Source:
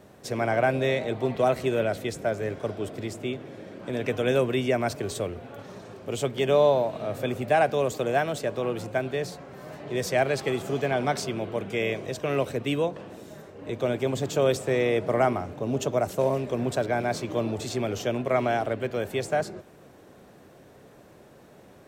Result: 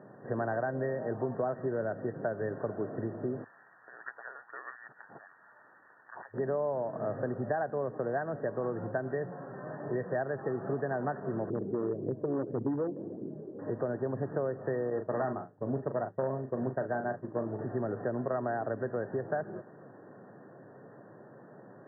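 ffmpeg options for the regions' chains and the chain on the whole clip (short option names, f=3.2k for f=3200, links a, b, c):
-filter_complex "[0:a]asettb=1/sr,asplit=3[a][b][c];[a]atrim=end=3.444[d];[b]atrim=start=3.44:end=6.34,asetpts=PTS-STARTPTS,afade=t=in:d=0.004:c=qsin,afade=t=out:st=2.896:d=0.004:c=qsin,acrusher=bits=9:dc=4:mix=0:aa=0.000001,volume=19.5dB,asoftclip=hard,volume=-19.5dB,lowpass=f=3.4k:t=q:w=0.5098,lowpass=f=3.4k:t=q:w=0.6013,lowpass=f=3.4k:t=q:w=0.9,lowpass=f=3.4k:t=q:w=2.563,afreqshift=-4000[e];[c]atrim=start=6.336[f];[d][e]acrossfade=d=0.004:c1=hsin:c2=qsin[g];[g][f]acrossfade=d=0.004:c1=qsin:c2=hsin,asettb=1/sr,asplit=3[h][i][j];[h]atrim=end=11.504[k];[i]atrim=start=11.5:end=13.59,asetpts=PTS-STARTPTS,afade=t=in:d=0.004:c=qsin,afade=t=out:st=2.086:d=0.004:c=qsin,lowpass=f=350:t=q:w=2,asoftclip=type=hard:threshold=-21dB,aphaser=in_gain=1:out_gain=1:delay=3.9:decay=0.35:speed=1.7:type=triangular[l];[j]atrim=start=13.586[m];[k][l]acrossfade=d=0.004:c1=hsin:c2=qsin[n];[n][m]acrossfade=d=0.004:c1=qsin:c2=hsin,asettb=1/sr,asplit=3[o][p][q];[o]atrim=end=14.904[r];[p]atrim=start=14.9:end=17.59,asetpts=PTS-STARTPTS,afade=t=in:d=0.004:c=qsin,afade=t=out:st=2.686:d=0.004:c=qsin,agate=range=-33dB:threshold=-25dB:ratio=3:release=100:detection=peak,asoftclip=type=hard:threshold=-18dB,asplit=2[s][t];[t]adelay=38,volume=-8.5dB[u];[s][u]amix=inputs=2:normalize=0,atrim=end_sample=118629[v];[q]atrim=start=17.586[w];[r][v]acrossfade=d=0.004:c1=hsin:c2=qsin[x];[x][w]acrossfade=d=0.004:c1=qsin:c2=hsin,acompressor=threshold=-29dB:ratio=6,afftfilt=real='re*between(b*sr/4096,100,1900)':imag='im*between(b*sr/4096,100,1900)':win_size=4096:overlap=0.75"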